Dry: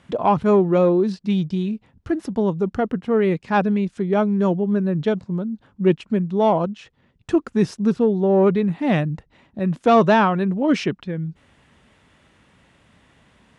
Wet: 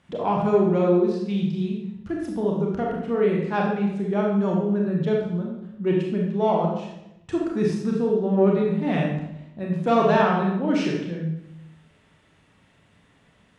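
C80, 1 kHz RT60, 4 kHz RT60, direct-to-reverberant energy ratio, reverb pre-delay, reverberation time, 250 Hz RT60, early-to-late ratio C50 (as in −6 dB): 5.0 dB, 0.80 s, 0.75 s, −2.0 dB, 28 ms, 0.85 s, 1.0 s, 1.5 dB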